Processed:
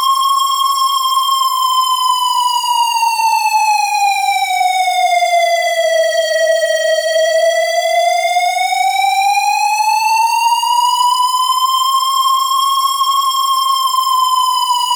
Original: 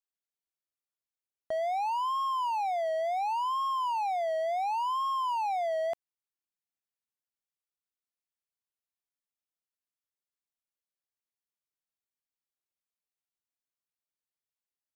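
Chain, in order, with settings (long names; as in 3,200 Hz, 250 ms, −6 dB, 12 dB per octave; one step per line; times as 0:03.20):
fuzz pedal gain 54 dB, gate −56 dBFS
extreme stretch with random phases 8.7×, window 0.05 s, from 0:02.16
leveller curve on the samples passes 1
level −2 dB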